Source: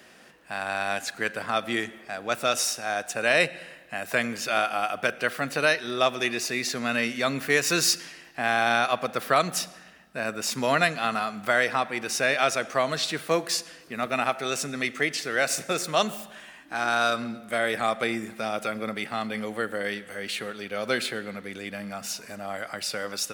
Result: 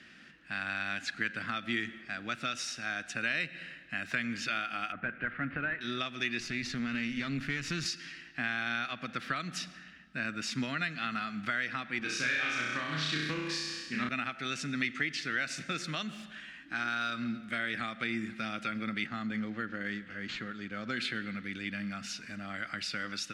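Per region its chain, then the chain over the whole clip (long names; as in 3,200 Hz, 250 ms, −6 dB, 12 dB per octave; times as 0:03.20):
0:04.92–0:05.81: variable-slope delta modulation 32 kbit/s + low-pass filter 2,100 Hz 24 dB per octave
0:06.40–0:07.86: low-shelf EQ 230 Hz +11.5 dB + downward compressor 2 to 1, threshold −25 dBFS + tube saturation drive 22 dB, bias 0.75
0:11.99–0:14.09: notch comb filter 690 Hz + flutter between parallel walls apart 5.6 metres, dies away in 1 s + highs frequency-modulated by the lows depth 0.19 ms
0:19.06–0:20.97: parametric band 2,700 Hz −8 dB 0.88 octaves + linearly interpolated sample-rate reduction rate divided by 4×
whole clip: downward compressor, threshold −26 dBFS; low-pass filter 4,100 Hz 12 dB per octave; flat-topped bell 650 Hz −14.5 dB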